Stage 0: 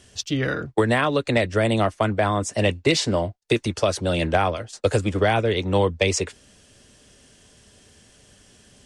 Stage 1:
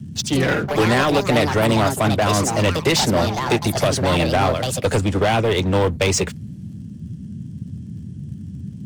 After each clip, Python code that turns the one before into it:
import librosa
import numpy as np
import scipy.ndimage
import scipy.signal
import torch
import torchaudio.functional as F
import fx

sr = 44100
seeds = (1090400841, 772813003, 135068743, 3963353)

y = fx.leveller(x, sr, passes=3)
y = fx.echo_pitch(y, sr, ms=124, semitones=5, count=2, db_per_echo=-6.0)
y = fx.dmg_noise_band(y, sr, seeds[0], low_hz=76.0, high_hz=220.0, level_db=-27.0)
y = y * 10.0 ** (-5.0 / 20.0)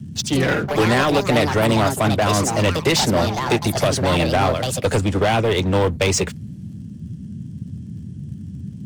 y = x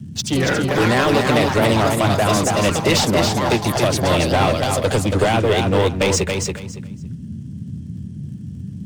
y = fx.echo_feedback(x, sr, ms=280, feedback_pct=20, wet_db=-4.5)